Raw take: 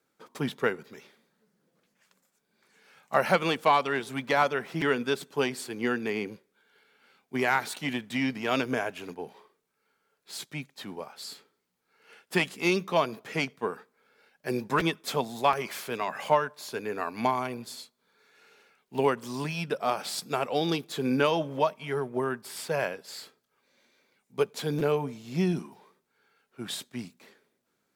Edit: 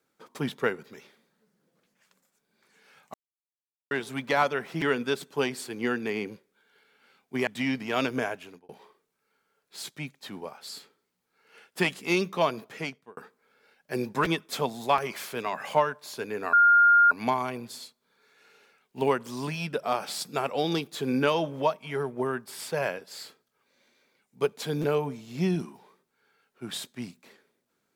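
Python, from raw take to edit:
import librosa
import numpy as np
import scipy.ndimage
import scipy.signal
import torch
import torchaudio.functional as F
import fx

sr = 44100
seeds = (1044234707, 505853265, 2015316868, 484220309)

y = fx.edit(x, sr, fx.silence(start_s=3.14, length_s=0.77),
    fx.cut(start_s=7.47, length_s=0.55),
    fx.fade_out_span(start_s=8.8, length_s=0.44),
    fx.fade_out_span(start_s=13.15, length_s=0.57),
    fx.insert_tone(at_s=17.08, length_s=0.58, hz=1410.0, db=-14.5), tone=tone)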